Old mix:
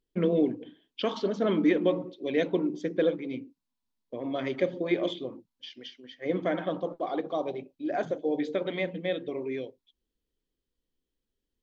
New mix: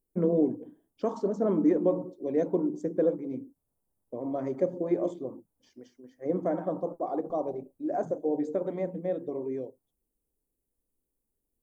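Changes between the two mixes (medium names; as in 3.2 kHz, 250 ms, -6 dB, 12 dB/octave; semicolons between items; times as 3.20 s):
second voice: remove two resonant band-passes 490 Hz, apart 2 oct; master: add FFT filter 940 Hz 0 dB, 3.3 kHz -28 dB, 9.4 kHz +13 dB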